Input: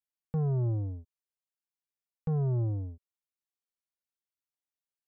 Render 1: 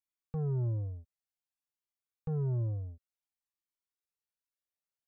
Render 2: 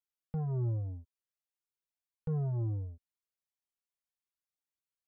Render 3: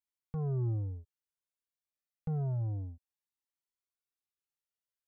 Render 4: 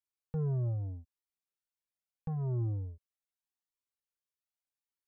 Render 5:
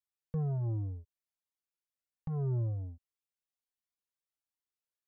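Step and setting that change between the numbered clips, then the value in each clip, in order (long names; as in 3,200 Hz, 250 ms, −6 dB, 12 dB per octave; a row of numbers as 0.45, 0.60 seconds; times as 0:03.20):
flanger whose copies keep moving one way, speed: 0.54, 1.9, 0.28, 0.81, 1.3 Hertz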